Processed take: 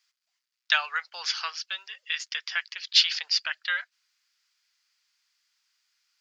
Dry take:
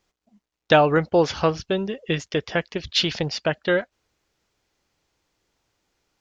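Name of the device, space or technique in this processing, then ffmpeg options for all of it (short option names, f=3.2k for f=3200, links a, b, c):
headphones lying on a table: -af "highpass=f=1.4k:w=0.5412,highpass=f=1.4k:w=1.3066,equalizer=f=4.8k:t=o:w=0.3:g=8"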